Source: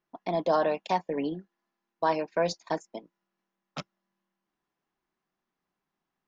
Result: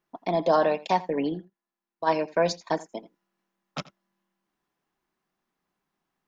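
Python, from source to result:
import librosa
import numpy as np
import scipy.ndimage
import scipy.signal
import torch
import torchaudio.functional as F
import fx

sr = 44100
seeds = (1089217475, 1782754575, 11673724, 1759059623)

p1 = fx.level_steps(x, sr, step_db=16, at=(1.39, 2.06), fade=0.02)
p2 = p1 + fx.echo_single(p1, sr, ms=84, db=-19.5, dry=0)
y = F.gain(torch.from_numpy(p2), 3.5).numpy()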